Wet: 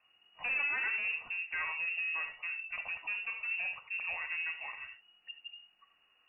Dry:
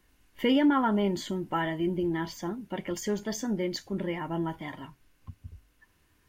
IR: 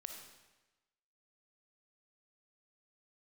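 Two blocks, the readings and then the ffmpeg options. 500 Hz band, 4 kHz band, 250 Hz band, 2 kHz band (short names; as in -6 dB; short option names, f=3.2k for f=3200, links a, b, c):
-26.5 dB, -8.0 dB, under -40 dB, +7.0 dB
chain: -filter_complex "[0:a]asoftclip=type=tanh:threshold=-28.5dB,lowpass=f=2.5k:t=q:w=0.5098,lowpass=f=2.5k:t=q:w=0.6013,lowpass=f=2.5k:t=q:w=0.9,lowpass=f=2.5k:t=q:w=2.563,afreqshift=-2900[a];[1:a]atrim=start_sample=2205,atrim=end_sample=3087,asetrate=30870,aresample=44100[b];[a][b]afir=irnorm=-1:irlink=0"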